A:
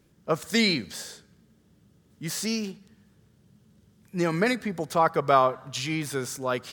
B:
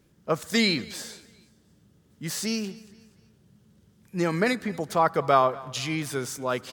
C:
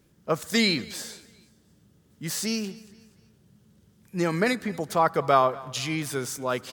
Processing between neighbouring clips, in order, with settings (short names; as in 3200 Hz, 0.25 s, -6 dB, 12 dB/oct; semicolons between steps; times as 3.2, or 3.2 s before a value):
feedback echo 0.236 s, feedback 41%, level -21.5 dB
high shelf 8200 Hz +3.5 dB